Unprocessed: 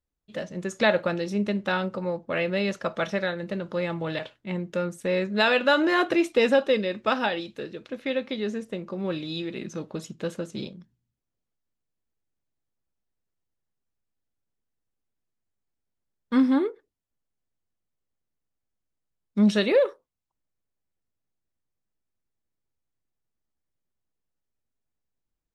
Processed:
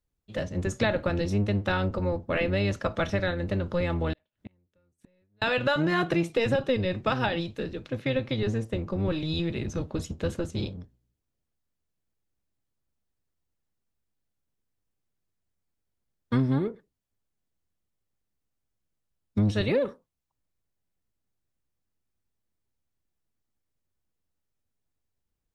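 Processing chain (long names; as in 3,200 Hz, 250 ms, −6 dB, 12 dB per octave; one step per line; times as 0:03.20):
sub-octave generator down 1 octave, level +2 dB
downward compressor 4 to 1, threshold −23 dBFS, peak gain reduction 10.5 dB
0:04.13–0:05.42: gate with flip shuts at −30 dBFS, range −42 dB
level +1 dB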